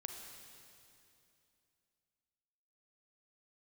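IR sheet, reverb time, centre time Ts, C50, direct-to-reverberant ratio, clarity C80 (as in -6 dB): 2.7 s, 71 ms, 4.0 dB, 3.0 dB, 5.0 dB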